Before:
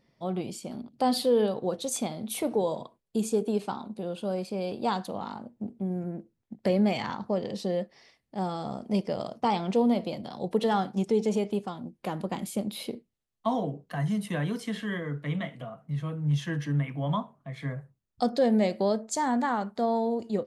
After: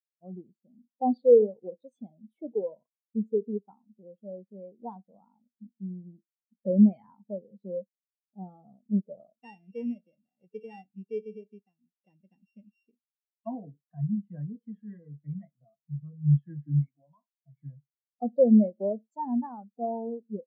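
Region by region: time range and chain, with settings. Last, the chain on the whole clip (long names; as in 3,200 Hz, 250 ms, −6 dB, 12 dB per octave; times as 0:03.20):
0:09.41–0:13.47: samples sorted by size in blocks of 16 samples + parametric band 5,700 Hz +7 dB 2.1 octaves + tuned comb filter 86 Hz, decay 0.45 s, harmonics odd, mix 50%
0:16.88–0:17.37: high-pass filter 540 Hz 6 dB per octave + downward compressor, threshold −34 dBFS
whole clip: high-shelf EQ 4,600 Hz −10 dB; every bin expanded away from the loudest bin 2.5 to 1; level +6 dB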